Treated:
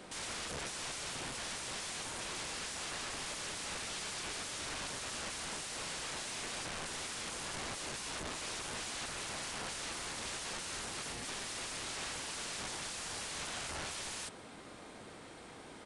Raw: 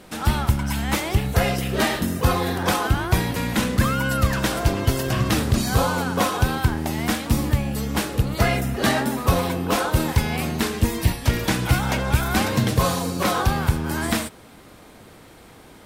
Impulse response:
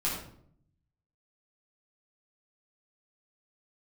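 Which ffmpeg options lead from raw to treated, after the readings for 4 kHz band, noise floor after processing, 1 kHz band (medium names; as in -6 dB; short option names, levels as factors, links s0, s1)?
-10.5 dB, -52 dBFS, -19.5 dB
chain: -filter_complex "[0:a]lowshelf=f=140:g=-10.5,acrossover=split=190[s0][s1];[s1]alimiter=limit=0.126:level=0:latency=1:release=131[s2];[s0][s2]amix=inputs=2:normalize=0,acompressor=threshold=0.0501:ratio=10,aeval=exprs='(mod(39.8*val(0)+1,2)-1)/39.8':c=same,aresample=22050,aresample=44100,volume=0.668"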